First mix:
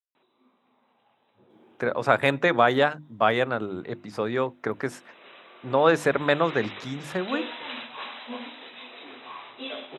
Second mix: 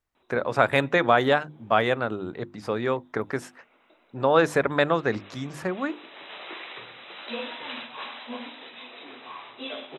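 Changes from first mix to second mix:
speech: entry -1.50 s; master: remove HPF 90 Hz

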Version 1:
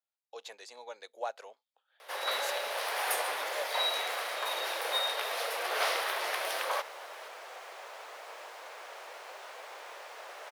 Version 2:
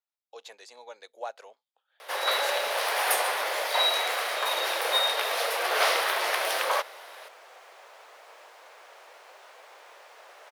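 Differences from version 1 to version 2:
first sound +6.5 dB; second sound -4.5 dB

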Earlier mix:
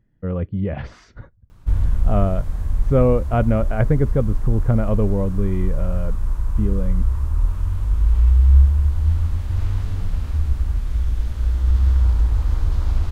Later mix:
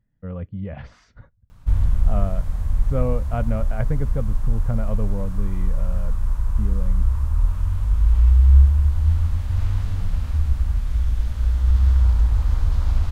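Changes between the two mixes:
speech -6.5 dB; master: add bell 360 Hz -9.5 dB 0.49 oct

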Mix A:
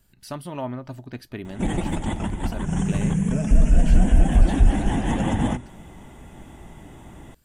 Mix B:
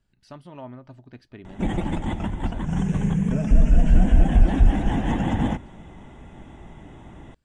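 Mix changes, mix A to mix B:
speech -8.5 dB; master: add air absorption 97 m

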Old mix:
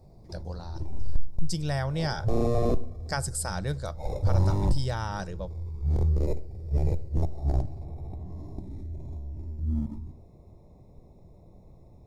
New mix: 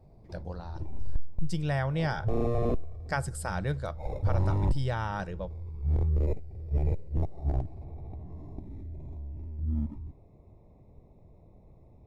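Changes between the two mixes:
background: send off; master: add resonant high shelf 3700 Hz -8.5 dB, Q 1.5

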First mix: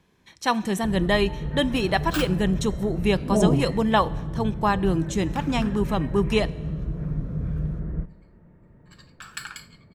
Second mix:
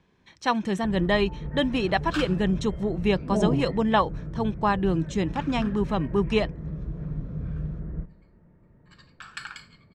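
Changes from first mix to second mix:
speech: send off; first sound -4.0 dB; master: add air absorption 88 m

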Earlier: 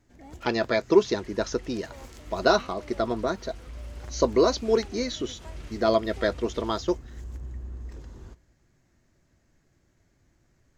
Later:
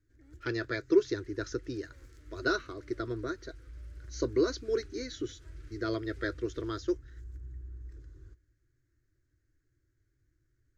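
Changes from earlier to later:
first sound -6.5 dB; second sound -4.5 dB; master: add EQ curve 130 Hz 0 dB, 190 Hz -29 dB, 300 Hz -1 dB, 450 Hz -8 dB, 820 Hz -27 dB, 1500 Hz -2 dB, 2800 Hz -14 dB, 4200 Hz -9 dB

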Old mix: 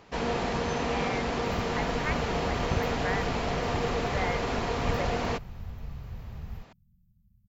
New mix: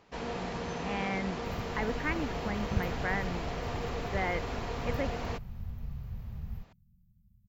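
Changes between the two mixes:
speech: remove brick-wall FIR high-pass 510 Hz; first sound -7.5 dB

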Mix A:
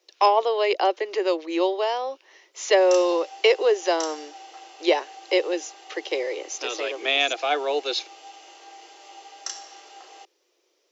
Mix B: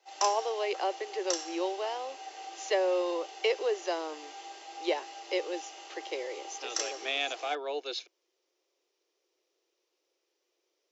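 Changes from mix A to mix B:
speech -10.0 dB; background: entry -2.70 s

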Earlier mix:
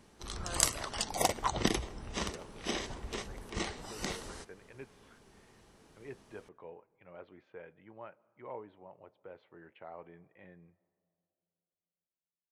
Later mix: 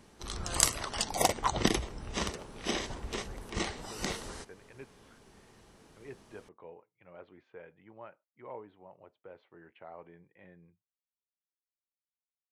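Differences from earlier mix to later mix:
background +3.0 dB; reverb: off

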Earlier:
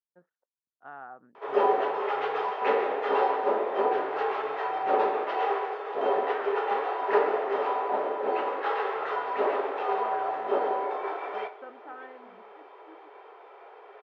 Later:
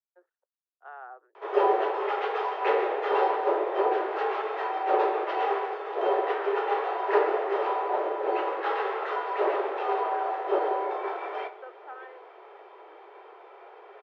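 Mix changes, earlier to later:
background: remove elliptic high-pass 400 Hz, stop band 80 dB; master: add steep high-pass 350 Hz 96 dB/oct

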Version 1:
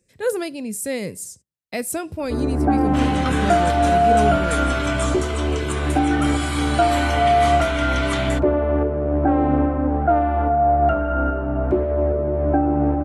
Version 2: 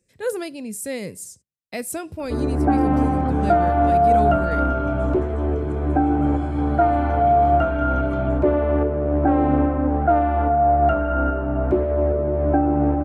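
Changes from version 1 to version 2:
speech -3.0 dB; second sound: add running mean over 47 samples

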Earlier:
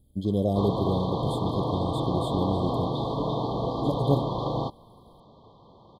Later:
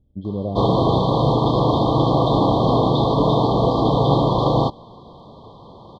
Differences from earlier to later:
speech: add air absorption 450 m; background +11.0 dB

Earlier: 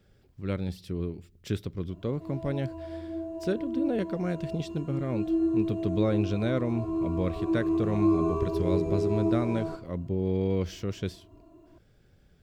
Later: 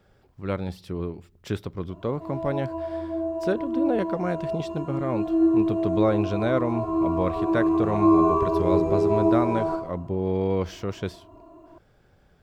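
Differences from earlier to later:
background: send +10.5 dB; master: add bell 920 Hz +11.5 dB 1.6 oct

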